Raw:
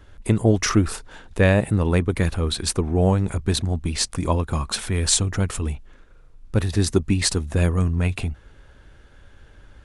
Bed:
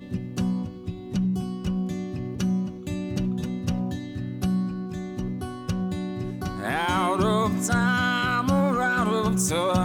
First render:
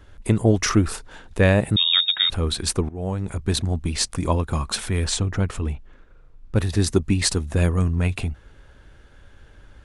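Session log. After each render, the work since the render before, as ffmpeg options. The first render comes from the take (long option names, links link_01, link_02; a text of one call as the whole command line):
ffmpeg -i in.wav -filter_complex "[0:a]asettb=1/sr,asplit=3[link_01][link_02][link_03];[link_01]atrim=end=1.764[link_04];[link_02]atrim=start=1.76:end=2.3,asetpts=PTS-STARTPTS,afade=type=in:duration=0.004:curve=qsin,afade=type=out:start_time=0.536:duration=0.004:curve=qsin,lowpass=frequency=3200:width_type=q:width=0.5098,lowpass=frequency=3200:width_type=q:width=0.6013,lowpass=frequency=3200:width_type=q:width=0.9,lowpass=frequency=3200:width_type=q:width=2.563,afreqshift=-3800[link_05];[link_03]atrim=start=2.296[link_06];[link_04][link_05]acrossfade=duration=0.004:curve1=hsin:curve2=qsin[link_07];[link_07][link_06]acrossfade=duration=0.004:curve1=qsin:curve2=hsin,asettb=1/sr,asplit=3[link_08][link_09][link_10];[link_08]atrim=end=5.044[link_11];[link_09]atrim=start=5.04:end=6.56,asetpts=PTS-STARTPTS,afade=type=in:duration=0.004:curve=qsin,afade=type=out:start_time=1.516:duration=0.004:curve=qsin,aemphasis=mode=reproduction:type=50kf[link_12];[link_10]atrim=start=6.556[link_13];[link_11][link_12]acrossfade=duration=0.004:curve1=hsin:curve2=qsin[link_14];[link_14][link_13]acrossfade=duration=0.004:curve1=qsin:curve2=hsin,asplit=2[link_15][link_16];[link_15]atrim=end=2.89,asetpts=PTS-STARTPTS,afade=type=out:start_time=2.886:duration=0.004:curve=hsin:silence=0.133352[link_17];[link_16]atrim=start=2.89,asetpts=PTS-STARTPTS,afade=type=in:duration=0.69:silence=0.133352[link_18];[link_17][link_18]concat=n=2:v=0:a=1" out.wav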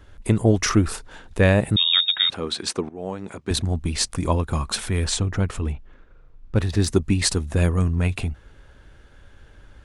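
ffmpeg -i in.wav -filter_complex "[0:a]asettb=1/sr,asplit=3[link_01][link_02][link_03];[link_01]atrim=end=2.304[link_04];[link_02]atrim=start=2.3:end=3.51,asetpts=PTS-STARTPTS,afade=type=in:duration=0.004:curve=qsin,afade=type=out:start_time=1.206:duration=0.004:curve=qsin,highpass=230,lowpass=7000[link_05];[link_03]atrim=start=3.506[link_06];[link_04][link_05]acrossfade=duration=0.004:curve1=hsin:curve2=qsin[link_07];[link_07][link_06]acrossfade=duration=0.004:curve1=qsin:curve2=hsin,asettb=1/sr,asplit=3[link_08][link_09][link_10];[link_08]atrim=end=5.724[link_11];[link_09]atrim=start=5.72:end=6.88,asetpts=PTS-STARTPTS,afade=type=in:duration=0.004:curve=qsin,afade=type=out:start_time=1.156:duration=0.004:curve=qsin,adynamicsmooth=sensitivity=4:basefreq=7700[link_12];[link_10]atrim=start=6.876[link_13];[link_11][link_12]acrossfade=duration=0.004:curve1=hsin:curve2=qsin[link_14];[link_14][link_13]acrossfade=duration=0.004:curve1=qsin:curve2=hsin" out.wav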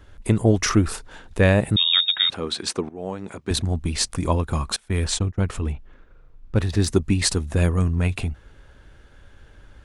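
ffmpeg -i in.wav -filter_complex "[0:a]asettb=1/sr,asplit=3[link_01][link_02][link_03];[link_01]atrim=end=4.764[link_04];[link_02]atrim=start=4.76:end=5.41,asetpts=PTS-STARTPTS,afade=type=in:duration=0.004:curve=qsin,afade=type=out:start_time=0.646:duration=0.004:curve=qsin,agate=range=-25dB:threshold=-27dB:ratio=16:release=100:detection=peak[link_05];[link_03]atrim=start=5.406[link_06];[link_04][link_05]acrossfade=duration=0.004:curve1=hsin:curve2=qsin[link_07];[link_07][link_06]acrossfade=duration=0.004:curve1=qsin:curve2=hsin" out.wav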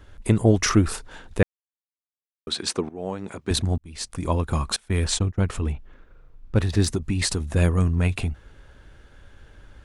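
ffmpeg -i in.wav -filter_complex "[0:a]asettb=1/sr,asplit=3[link_01][link_02][link_03];[link_01]atrim=end=6.874[link_04];[link_02]atrim=start=6.87:end=7.56,asetpts=PTS-STARTPTS,afade=type=in:duration=0.004:curve=qsin,afade=type=out:start_time=0.686:duration=0.004:curve=qsin,acompressor=threshold=-19dB:ratio=10:attack=3.2:release=140:knee=1:detection=peak[link_05];[link_03]atrim=start=7.556[link_06];[link_04][link_05]acrossfade=duration=0.004:curve1=hsin:curve2=qsin[link_07];[link_07][link_06]acrossfade=duration=0.004:curve1=qsin:curve2=hsin,asplit=4[link_08][link_09][link_10][link_11];[link_08]atrim=end=1.43,asetpts=PTS-STARTPTS,afade=type=out:start_time=1.426:duration=0.004:curve=hsin[link_12];[link_09]atrim=start=1.43:end=2.47,asetpts=PTS-STARTPTS,volume=0[link_13];[link_10]atrim=start=2.47:end=3.78,asetpts=PTS-STARTPTS,afade=type=in:duration=0.004:curve=hsin,afade=type=out:start_time=1.306:duration=0.004:curve=hsin[link_14];[link_11]atrim=start=3.78,asetpts=PTS-STARTPTS,afade=type=in:duration=0.7[link_15];[link_12][link_13][link_14][link_15]concat=n=4:v=0:a=1" out.wav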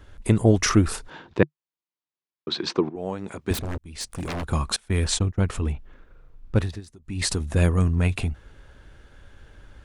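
ffmpeg -i in.wav -filter_complex "[0:a]asettb=1/sr,asplit=3[link_01][link_02][link_03];[link_01]atrim=end=1.104[link_04];[link_02]atrim=start=1.1:end=2.96,asetpts=PTS-STARTPTS,afade=type=in:duration=0.004:curve=qsin,afade=type=out:start_time=1.856:duration=0.004:curve=qsin,highpass=120,equalizer=frequency=150:width_type=q:width=4:gain=7,equalizer=frequency=340:width_type=q:width=4:gain=8,equalizer=frequency=990:width_type=q:width=4:gain=6,lowpass=frequency=5100:width=0.5412,lowpass=frequency=5100:width=1.3066[link_05];[link_03]atrim=start=2.956[link_06];[link_04][link_05]acrossfade=duration=0.004:curve1=hsin:curve2=qsin[link_07];[link_07][link_06]acrossfade=duration=0.004:curve1=qsin:curve2=hsin,asettb=1/sr,asplit=3[link_08][link_09][link_10];[link_08]atrim=end=3.534[link_11];[link_09]atrim=start=3.53:end=4.45,asetpts=PTS-STARTPTS,afade=type=in:duration=0.004:curve=qsin,afade=type=out:start_time=0.916:duration=0.004:curve=qsin,aeval=exprs='0.0596*(abs(mod(val(0)/0.0596+3,4)-2)-1)':channel_layout=same[link_12];[link_10]atrim=start=4.446[link_13];[link_11][link_12]acrossfade=duration=0.004:curve1=hsin:curve2=qsin[link_14];[link_14][link_13]acrossfade=duration=0.004:curve1=qsin:curve2=hsin,asplit=3[link_15][link_16][link_17];[link_15]atrim=end=6.81,asetpts=PTS-STARTPTS,afade=type=out:start_time=6.56:duration=0.25:silence=0.0707946[link_18];[link_16]atrim=start=6.81:end=7.03,asetpts=PTS-STARTPTS,volume=-23dB[link_19];[link_17]atrim=start=7.03,asetpts=PTS-STARTPTS,afade=type=in:duration=0.25:silence=0.0707946[link_20];[link_18][link_19][link_20]concat=n=3:v=0:a=1" out.wav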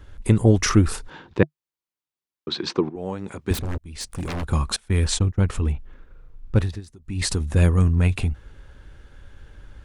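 ffmpeg -i in.wav -af "lowshelf=frequency=130:gain=5,bandreject=frequency=660:width=12" out.wav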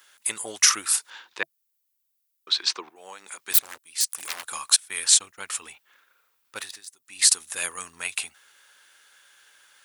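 ffmpeg -i in.wav -af "highpass=1200,aemphasis=mode=production:type=75fm" out.wav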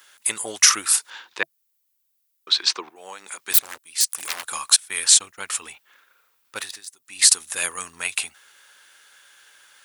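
ffmpeg -i in.wav -af "volume=4dB,alimiter=limit=-1dB:level=0:latency=1" out.wav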